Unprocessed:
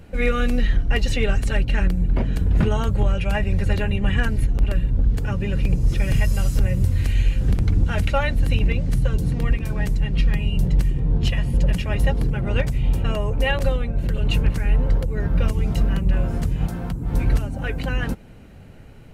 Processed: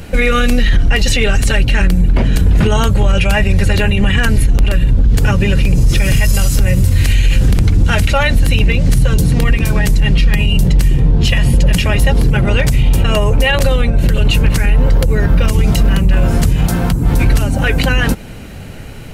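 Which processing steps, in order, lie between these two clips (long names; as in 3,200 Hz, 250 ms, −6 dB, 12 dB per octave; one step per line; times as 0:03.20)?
high-shelf EQ 2,200 Hz +8.5 dB
boost into a limiter +16 dB
level −2.5 dB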